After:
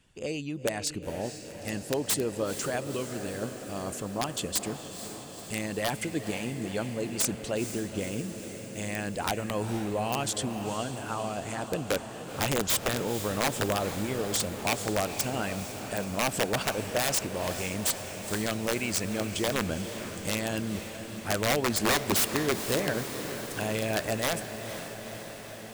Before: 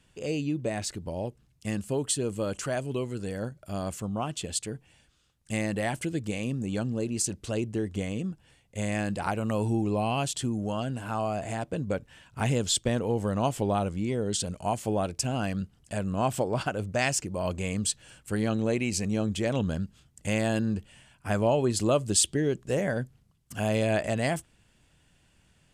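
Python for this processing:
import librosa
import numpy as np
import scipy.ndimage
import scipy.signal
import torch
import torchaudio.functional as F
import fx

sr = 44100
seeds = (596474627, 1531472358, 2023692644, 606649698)

y = fx.hpss(x, sr, part='percussive', gain_db=9)
y = (np.mod(10.0 ** (12.5 / 20.0) * y + 1.0, 2.0) - 1.0) / 10.0 ** (12.5 / 20.0)
y = fx.echo_diffused(y, sr, ms=478, feedback_pct=72, wet_db=-10)
y = y * librosa.db_to_amplitude(-6.5)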